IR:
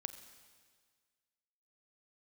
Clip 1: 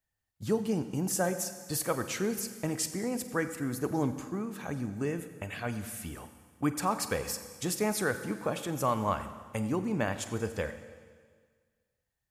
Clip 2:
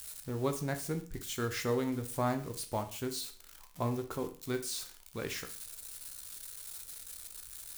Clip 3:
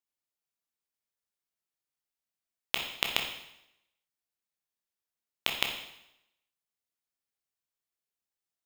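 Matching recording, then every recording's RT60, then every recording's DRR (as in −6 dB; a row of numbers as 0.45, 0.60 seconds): 1; 1.7, 0.45, 0.80 seconds; 9.5, 6.0, 2.0 decibels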